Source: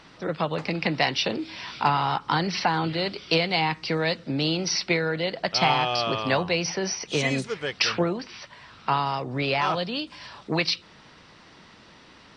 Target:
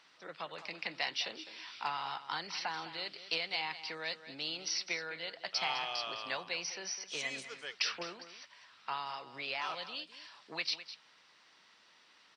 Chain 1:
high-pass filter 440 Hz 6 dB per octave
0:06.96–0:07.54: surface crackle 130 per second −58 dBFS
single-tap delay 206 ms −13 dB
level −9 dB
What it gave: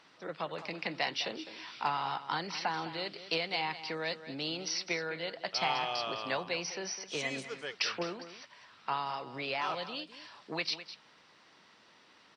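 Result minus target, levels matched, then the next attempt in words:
500 Hz band +5.5 dB
high-pass filter 1,600 Hz 6 dB per octave
0:06.96–0:07.54: surface crackle 130 per second −58 dBFS
single-tap delay 206 ms −13 dB
level −9 dB

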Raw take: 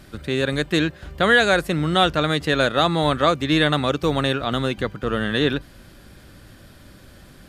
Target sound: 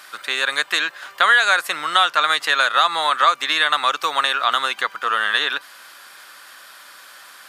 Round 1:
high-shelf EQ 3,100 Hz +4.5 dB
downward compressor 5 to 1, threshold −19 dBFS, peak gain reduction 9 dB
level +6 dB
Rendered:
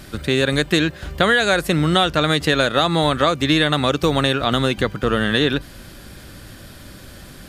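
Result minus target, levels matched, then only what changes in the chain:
1,000 Hz band −4.0 dB
add after downward compressor: high-pass with resonance 1,100 Hz, resonance Q 2

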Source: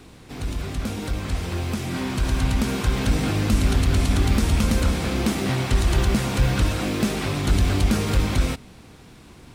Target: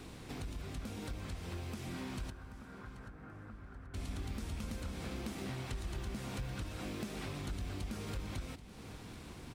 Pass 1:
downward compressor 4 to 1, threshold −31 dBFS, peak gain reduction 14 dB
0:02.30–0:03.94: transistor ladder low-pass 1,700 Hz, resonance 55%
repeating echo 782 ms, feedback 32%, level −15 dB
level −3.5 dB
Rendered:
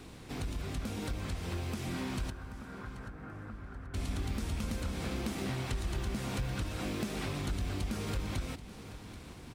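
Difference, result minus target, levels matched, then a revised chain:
downward compressor: peak gain reduction −5.5 dB
downward compressor 4 to 1, threshold −38.5 dBFS, peak gain reduction 20 dB
0:02.30–0:03.94: transistor ladder low-pass 1,700 Hz, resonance 55%
repeating echo 782 ms, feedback 32%, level −15 dB
level −3.5 dB

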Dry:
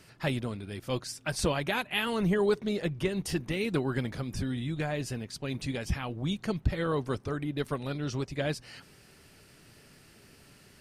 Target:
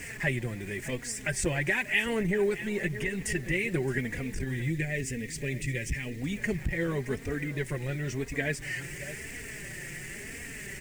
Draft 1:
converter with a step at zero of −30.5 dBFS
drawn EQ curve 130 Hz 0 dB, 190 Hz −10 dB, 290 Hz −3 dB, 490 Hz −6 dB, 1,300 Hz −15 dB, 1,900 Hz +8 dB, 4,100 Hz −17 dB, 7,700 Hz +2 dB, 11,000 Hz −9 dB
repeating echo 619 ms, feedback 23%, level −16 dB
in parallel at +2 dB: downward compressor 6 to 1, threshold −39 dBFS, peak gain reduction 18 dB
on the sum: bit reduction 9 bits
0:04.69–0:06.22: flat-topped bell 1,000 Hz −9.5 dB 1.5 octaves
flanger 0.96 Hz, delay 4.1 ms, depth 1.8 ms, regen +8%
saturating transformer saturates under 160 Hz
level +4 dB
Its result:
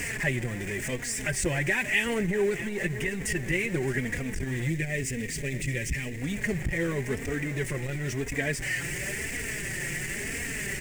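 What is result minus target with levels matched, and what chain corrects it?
converter with a step at zero: distortion +10 dB
converter with a step at zero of −42.5 dBFS
drawn EQ curve 130 Hz 0 dB, 190 Hz −10 dB, 290 Hz −3 dB, 490 Hz −6 dB, 1,300 Hz −15 dB, 1,900 Hz +8 dB, 4,100 Hz −17 dB, 7,700 Hz +2 dB, 11,000 Hz −9 dB
repeating echo 619 ms, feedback 23%, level −16 dB
in parallel at +2 dB: downward compressor 6 to 1, threshold −39 dBFS, peak gain reduction 17.5 dB
on the sum: bit reduction 9 bits
0:04.69–0:06.22: flat-topped bell 1,000 Hz −9.5 dB 1.5 octaves
flanger 0.96 Hz, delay 4.1 ms, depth 1.8 ms, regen +8%
saturating transformer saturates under 160 Hz
level +4 dB

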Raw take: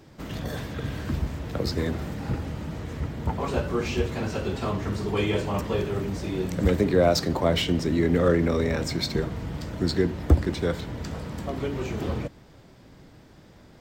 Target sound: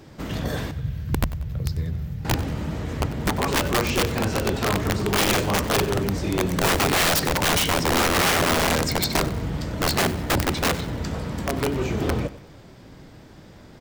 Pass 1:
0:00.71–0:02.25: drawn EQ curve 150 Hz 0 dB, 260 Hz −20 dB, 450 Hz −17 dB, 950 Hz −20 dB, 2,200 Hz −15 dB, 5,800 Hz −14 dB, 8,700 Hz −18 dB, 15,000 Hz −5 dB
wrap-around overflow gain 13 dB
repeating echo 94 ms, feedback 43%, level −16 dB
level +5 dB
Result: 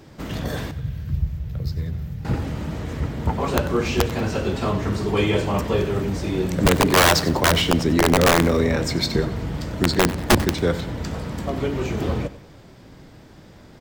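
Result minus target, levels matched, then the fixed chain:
wrap-around overflow: distortion −7 dB
0:00.71–0:02.25: drawn EQ curve 150 Hz 0 dB, 260 Hz −20 dB, 450 Hz −17 dB, 950 Hz −20 dB, 2,200 Hz −15 dB, 5,800 Hz −14 dB, 8,700 Hz −18 dB, 15,000 Hz −5 dB
wrap-around overflow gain 19.5 dB
repeating echo 94 ms, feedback 43%, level −16 dB
level +5 dB

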